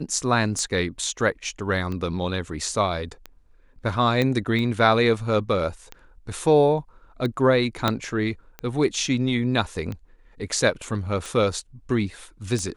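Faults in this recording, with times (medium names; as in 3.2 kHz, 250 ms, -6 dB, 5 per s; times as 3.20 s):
tick 45 rpm -19 dBFS
4.22 s: pop -11 dBFS
7.88 s: pop -6 dBFS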